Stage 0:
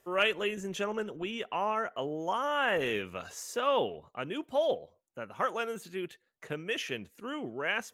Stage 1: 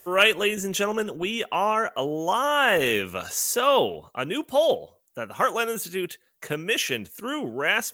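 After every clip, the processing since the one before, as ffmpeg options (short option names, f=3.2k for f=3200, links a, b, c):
-af "aemphasis=mode=production:type=50fm,volume=8dB"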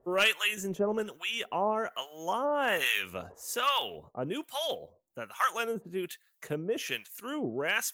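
-filter_complex "[0:a]asoftclip=type=hard:threshold=-10.5dB,acrossover=split=930[a][b];[a]aeval=exprs='val(0)*(1-1/2+1/2*cos(2*PI*1.2*n/s))':c=same[c];[b]aeval=exprs='val(0)*(1-1/2-1/2*cos(2*PI*1.2*n/s))':c=same[d];[c][d]amix=inputs=2:normalize=0,volume=-1.5dB"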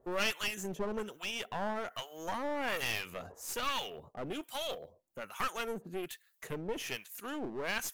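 -filter_complex "[0:a]asplit=2[a][b];[b]acompressor=threshold=-36dB:ratio=6,volume=-2dB[c];[a][c]amix=inputs=2:normalize=0,aeval=exprs='clip(val(0),-1,0.0188)':c=same,volume=-5.5dB"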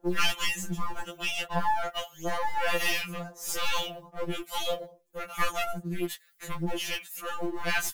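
-filter_complex "[0:a]asplit=2[a][b];[b]acrusher=bits=5:mode=log:mix=0:aa=0.000001,volume=-3dB[c];[a][c]amix=inputs=2:normalize=0,afftfilt=real='re*2.83*eq(mod(b,8),0)':imag='im*2.83*eq(mod(b,8),0)':win_size=2048:overlap=0.75,volume=4.5dB"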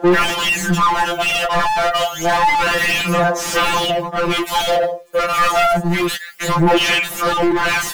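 -filter_complex "[0:a]asplit=2[a][b];[b]highpass=f=720:p=1,volume=37dB,asoftclip=type=tanh:threshold=-11.5dB[c];[a][c]amix=inputs=2:normalize=0,lowpass=f=2.1k:p=1,volume=-6dB,aphaser=in_gain=1:out_gain=1:delay=1.7:decay=0.41:speed=0.29:type=sinusoidal,volume=3dB"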